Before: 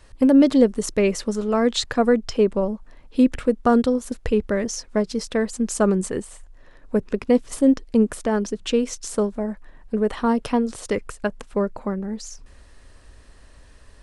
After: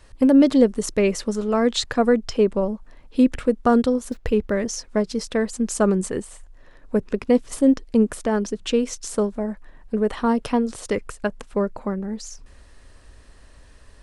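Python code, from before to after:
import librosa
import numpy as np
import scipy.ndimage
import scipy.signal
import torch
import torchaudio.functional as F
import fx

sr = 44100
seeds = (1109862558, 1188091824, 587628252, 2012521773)

y = fx.median_filter(x, sr, points=5, at=(4.1, 4.51), fade=0.02)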